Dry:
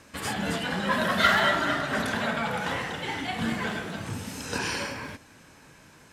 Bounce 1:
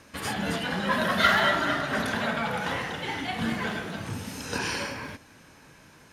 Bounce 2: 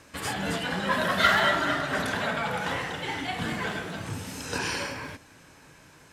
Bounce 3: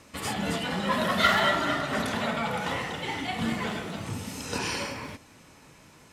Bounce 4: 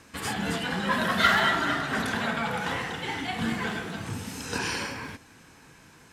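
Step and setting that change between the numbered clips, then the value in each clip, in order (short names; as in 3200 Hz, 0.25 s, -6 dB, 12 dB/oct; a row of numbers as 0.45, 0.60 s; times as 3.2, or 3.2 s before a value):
notch, frequency: 7700, 220, 1600, 590 Hz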